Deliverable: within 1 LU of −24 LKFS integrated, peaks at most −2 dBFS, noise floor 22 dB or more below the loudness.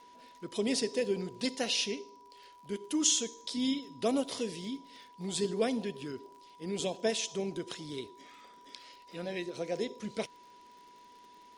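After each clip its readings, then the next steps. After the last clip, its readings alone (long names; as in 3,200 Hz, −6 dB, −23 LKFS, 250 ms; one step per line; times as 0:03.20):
crackle rate 58 per second; interfering tone 980 Hz; level of the tone −54 dBFS; integrated loudness −34.0 LKFS; sample peak −13.0 dBFS; target loudness −24.0 LKFS
→ click removal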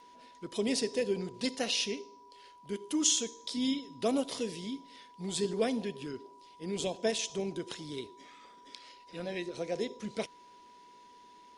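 crackle rate 0.26 per second; interfering tone 980 Hz; level of the tone −54 dBFS
→ notch filter 980 Hz, Q 30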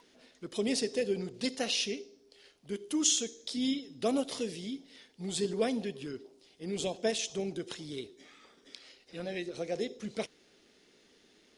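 interfering tone none found; integrated loudness −34.0 LKFS; sample peak −13.5 dBFS; target loudness −24.0 LKFS
→ level +10 dB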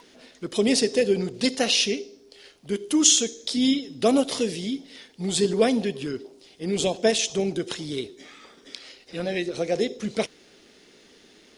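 integrated loudness −24.0 LKFS; sample peak −3.5 dBFS; background noise floor −55 dBFS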